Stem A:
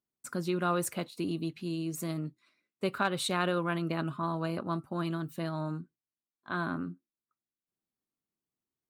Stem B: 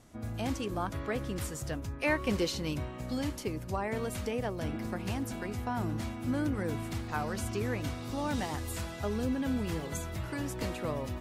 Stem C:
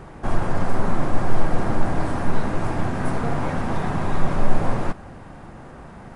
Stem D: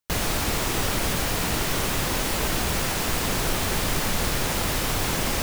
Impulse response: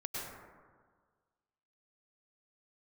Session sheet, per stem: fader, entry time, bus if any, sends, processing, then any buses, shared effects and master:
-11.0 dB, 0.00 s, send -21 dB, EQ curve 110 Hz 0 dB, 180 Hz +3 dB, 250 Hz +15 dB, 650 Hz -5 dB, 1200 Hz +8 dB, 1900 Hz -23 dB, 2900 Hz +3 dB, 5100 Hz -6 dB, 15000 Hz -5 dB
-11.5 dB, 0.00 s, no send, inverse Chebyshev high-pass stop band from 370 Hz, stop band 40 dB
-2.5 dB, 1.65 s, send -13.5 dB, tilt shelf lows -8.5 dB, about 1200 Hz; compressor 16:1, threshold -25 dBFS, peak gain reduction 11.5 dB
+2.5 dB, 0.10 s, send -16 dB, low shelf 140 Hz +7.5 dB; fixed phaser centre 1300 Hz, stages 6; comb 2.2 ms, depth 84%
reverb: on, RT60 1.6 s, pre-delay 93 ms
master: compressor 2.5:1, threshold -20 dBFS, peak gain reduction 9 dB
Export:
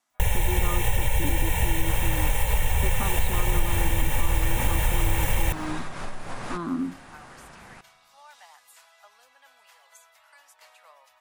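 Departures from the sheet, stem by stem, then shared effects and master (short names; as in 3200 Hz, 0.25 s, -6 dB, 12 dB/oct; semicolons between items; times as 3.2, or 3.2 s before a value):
stem A -11.0 dB -> -4.0 dB; reverb return -9.5 dB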